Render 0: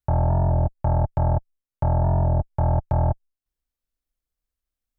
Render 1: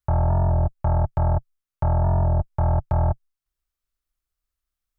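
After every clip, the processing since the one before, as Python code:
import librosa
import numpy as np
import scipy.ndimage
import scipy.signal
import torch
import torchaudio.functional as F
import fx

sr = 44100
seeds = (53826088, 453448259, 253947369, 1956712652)

y = fx.graphic_eq_31(x, sr, hz=(125, 250, 500, 800, 1250), db=(-4, -12, -7, -3, 5))
y = y * 10.0 ** (1.5 / 20.0)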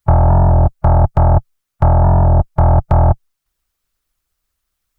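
y = fx.hpss(x, sr, part='percussive', gain_db=9)
y = y * 10.0 ** (7.0 / 20.0)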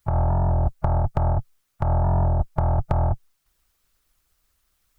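y = fx.over_compress(x, sr, threshold_db=-14.0, ratio=-0.5)
y = y * 10.0 ** (-3.0 / 20.0)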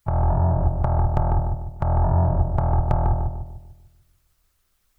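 y = fx.echo_filtered(x, sr, ms=148, feedback_pct=46, hz=920.0, wet_db=-3.0)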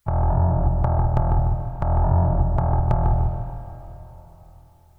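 y = fx.rev_plate(x, sr, seeds[0], rt60_s=3.9, hf_ratio=1.0, predelay_ms=115, drr_db=9.5)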